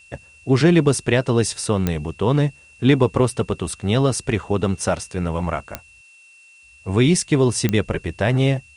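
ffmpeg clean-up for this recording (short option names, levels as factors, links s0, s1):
-af "adeclick=t=4,bandreject=f=2700:w=30,agate=range=0.0891:threshold=0.00891"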